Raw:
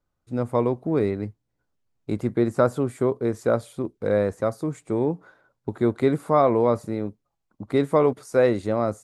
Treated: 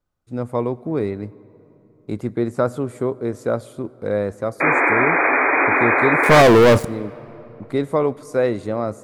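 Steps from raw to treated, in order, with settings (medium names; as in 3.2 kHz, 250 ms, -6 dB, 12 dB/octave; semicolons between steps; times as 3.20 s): 6.23–6.85 s: waveshaping leveller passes 5; 4.60–6.42 s: painted sound noise 250–2500 Hz -17 dBFS; on a send: reverberation RT60 3.8 s, pre-delay 66 ms, DRR 21.5 dB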